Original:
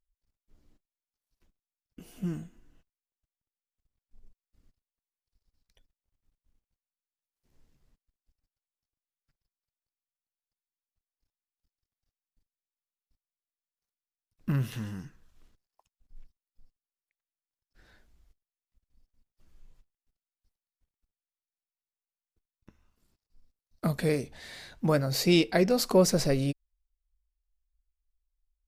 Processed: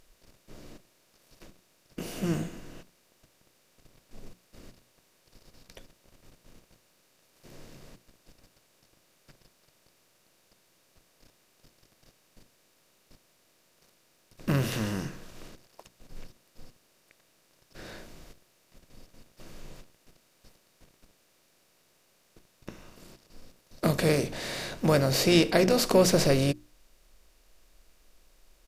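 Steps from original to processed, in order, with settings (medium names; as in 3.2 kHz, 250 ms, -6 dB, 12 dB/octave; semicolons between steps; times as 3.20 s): spectral levelling over time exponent 0.6; hum notches 60/120/180/240/300/360 Hz; harmony voices -7 st -17 dB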